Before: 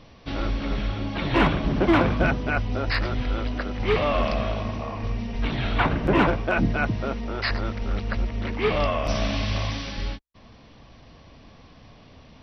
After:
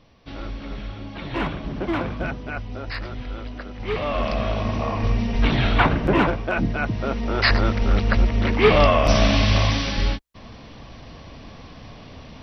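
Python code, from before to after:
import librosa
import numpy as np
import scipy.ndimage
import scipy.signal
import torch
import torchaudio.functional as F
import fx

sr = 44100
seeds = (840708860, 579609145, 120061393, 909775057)

y = fx.gain(x, sr, db=fx.line((3.75, -6.0), (4.87, 7.0), (5.56, 7.0), (6.33, -0.5), (6.84, -0.5), (7.43, 8.0)))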